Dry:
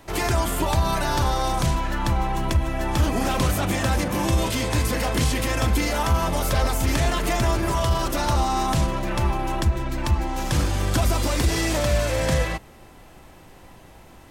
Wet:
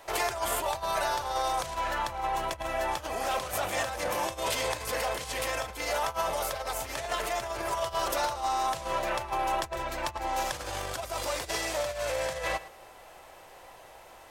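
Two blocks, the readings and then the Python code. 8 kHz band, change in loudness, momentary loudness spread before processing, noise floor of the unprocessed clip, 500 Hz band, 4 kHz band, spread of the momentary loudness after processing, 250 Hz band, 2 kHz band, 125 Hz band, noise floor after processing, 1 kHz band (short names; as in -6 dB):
-6.0 dB, -8.0 dB, 3 LU, -47 dBFS, -5.0 dB, -6.0 dB, 8 LU, -18.5 dB, -5.0 dB, -22.5 dB, -51 dBFS, -3.5 dB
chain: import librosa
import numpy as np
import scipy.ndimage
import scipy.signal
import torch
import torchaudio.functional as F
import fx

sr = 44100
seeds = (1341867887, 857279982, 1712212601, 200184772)

y = x + 10.0 ** (-17.0 / 20.0) * np.pad(x, (int(110 * sr / 1000.0), 0))[:len(x)]
y = fx.over_compress(y, sr, threshold_db=-25.0, ratio=-1.0)
y = fx.low_shelf_res(y, sr, hz=370.0, db=-13.5, q=1.5)
y = y * librosa.db_to_amplitude(-4.0)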